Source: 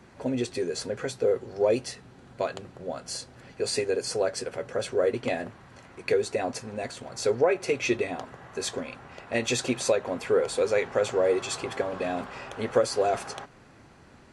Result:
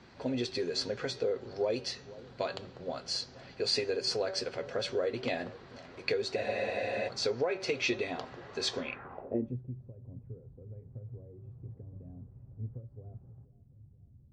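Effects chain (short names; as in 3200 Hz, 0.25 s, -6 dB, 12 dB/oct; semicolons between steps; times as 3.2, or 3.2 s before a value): de-hum 191.3 Hz, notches 38; compressor 3:1, threshold -25 dBFS, peak gain reduction 6.5 dB; analogue delay 0.478 s, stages 4096, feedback 48%, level -19 dB; low-pass sweep 4500 Hz -> 110 Hz, 8.78–9.64; spectral freeze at 6.38, 0.68 s; gain -3 dB; MP3 56 kbps 32000 Hz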